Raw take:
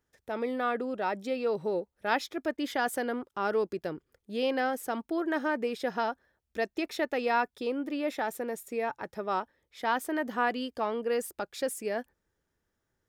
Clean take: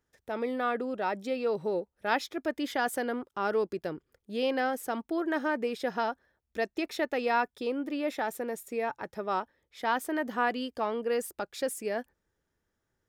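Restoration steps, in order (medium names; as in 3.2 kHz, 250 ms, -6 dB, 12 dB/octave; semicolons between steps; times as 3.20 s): interpolate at 2.57 s, 11 ms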